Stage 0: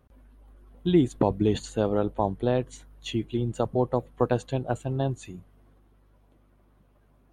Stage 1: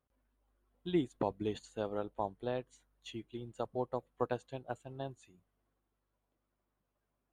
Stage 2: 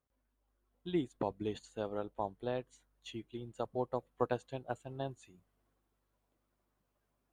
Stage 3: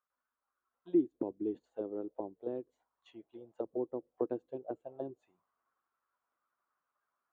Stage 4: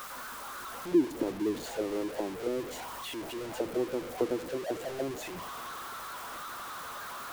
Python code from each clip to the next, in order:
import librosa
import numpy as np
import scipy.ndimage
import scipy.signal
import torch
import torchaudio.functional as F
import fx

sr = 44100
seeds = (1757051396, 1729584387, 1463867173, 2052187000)

y1 = fx.low_shelf(x, sr, hz=350.0, db=-9.0)
y1 = fx.upward_expand(y1, sr, threshold_db=-43.0, expansion=1.5)
y1 = F.gain(torch.from_numpy(y1), -5.5).numpy()
y2 = fx.rider(y1, sr, range_db=3, speed_s=2.0)
y3 = fx.auto_wah(y2, sr, base_hz=330.0, top_hz=1300.0, q=3.7, full_db=-35.0, direction='down')
y3 = F.gain(torch.from_numpy(y3), 7.0).numpy()
y4 = y3 + 0.5 * 10.0 ** (-37.0 / 20.0) * np.sign(y3)
y4 = F.gain(torch.from_numpy(y4), 3.0).numpy()